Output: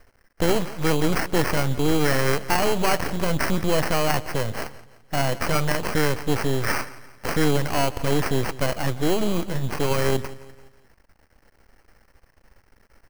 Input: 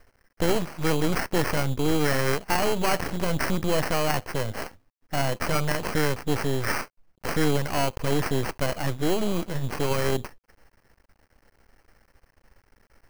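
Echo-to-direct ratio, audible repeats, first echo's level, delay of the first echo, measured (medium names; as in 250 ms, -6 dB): -17.0 dB, 3, -18.0 dB, 171 ms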